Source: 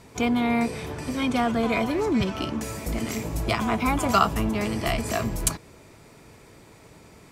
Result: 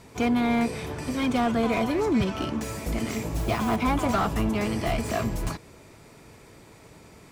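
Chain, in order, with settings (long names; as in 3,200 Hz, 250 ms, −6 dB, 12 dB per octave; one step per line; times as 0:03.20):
0:03.34–0:03.76: noise that follows the level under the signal 19 dB
slew-rate limiting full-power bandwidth 87 Hz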